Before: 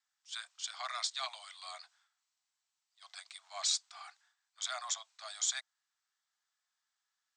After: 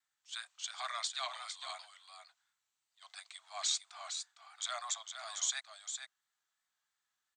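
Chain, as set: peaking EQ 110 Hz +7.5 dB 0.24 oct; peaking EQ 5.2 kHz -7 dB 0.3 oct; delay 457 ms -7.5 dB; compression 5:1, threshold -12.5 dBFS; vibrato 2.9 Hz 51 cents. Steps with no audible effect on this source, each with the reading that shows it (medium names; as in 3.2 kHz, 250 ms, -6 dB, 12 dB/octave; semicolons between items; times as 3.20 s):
peaking EQ 110 Hz: input has nothing below 540 Hz; compression, threshold -12.5 dBFS: peak at its input -21.0 dBFS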